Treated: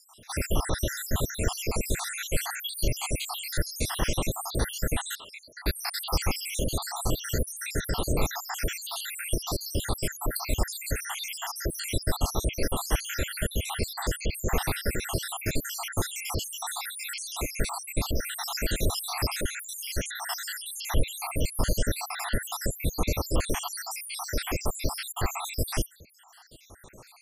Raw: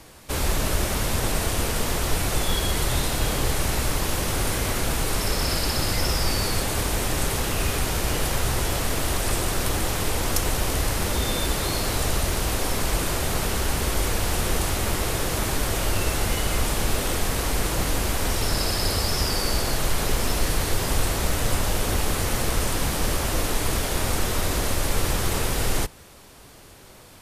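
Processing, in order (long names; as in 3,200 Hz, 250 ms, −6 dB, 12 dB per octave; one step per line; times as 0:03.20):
time-frequency cells dropped at random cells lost 79%
0:05.15–0:05.66: resonant band-pass 2,100 Hz, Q 2.6
level +1 dB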